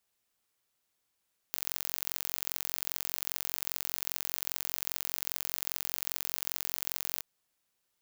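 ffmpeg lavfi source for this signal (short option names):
-f lavfi -i "aevalsrc='0.562*eq(mod(n,980),0)*(0.5+0.5*eq(mod(n,1960),0))':d=5.68:s=44100"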